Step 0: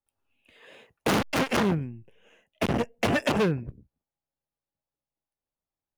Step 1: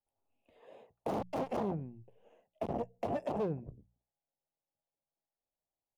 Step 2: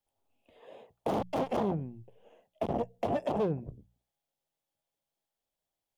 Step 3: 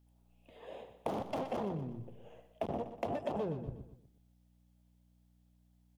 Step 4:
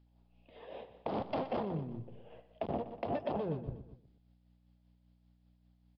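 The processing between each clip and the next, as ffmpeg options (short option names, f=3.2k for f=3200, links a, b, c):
-af "firequalizer=gain_entry='entry(260,0);entry(710,8);entry(1500,-12)':delay=0.05:min_phase=1,alimiter=limit=-20.5dB:level=0:latency=1:release=417,bandreject=f=60:t=h:w=6,bandreject=f=120:t=h:w=6,bandreject=f=180:t=h:w=6,volume=-5.5dB"
-af "equalizer=f=3.3k:t=o:w=0.26:g=5.5,volume=4.5dB"
-af "acompressor=threshold=-37dB:ratio=6,aeval=exprs='val(0)+0.000355*(sin(2*PI*60*n/s)+sin(2*PI*2*60*n/s)/2+sin(2*PI*3*60*n/s)/3+sin(2*PI*4*60*n/s)/4+sin(2*PI*5*60*n/s)/5)':c=same,aecho=1:1:122|244|366|488:0.282|0.121|0.0521|0.0224,volume=3dB"
-af "tremolo=f=5.1:d=0.39,aresample=11025,aresample=44100,volume=2.5dB"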